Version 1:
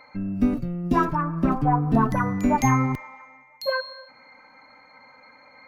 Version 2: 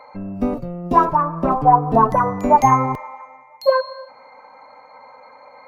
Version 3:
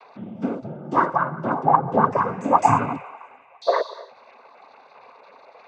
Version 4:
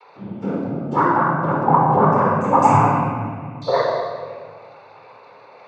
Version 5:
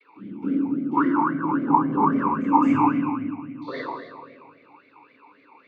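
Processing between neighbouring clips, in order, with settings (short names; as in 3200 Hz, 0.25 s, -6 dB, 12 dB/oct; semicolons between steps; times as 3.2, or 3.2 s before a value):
band shelf 700 Hz +12 dB; gain -1 dB
noise vocoder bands 16; gain -4 dB
shoebox room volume 2200 m³, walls mixed, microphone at 4.3 m; gain -3 dB
vowel sweep i-u 3.7 Hz; gain +7.5 dB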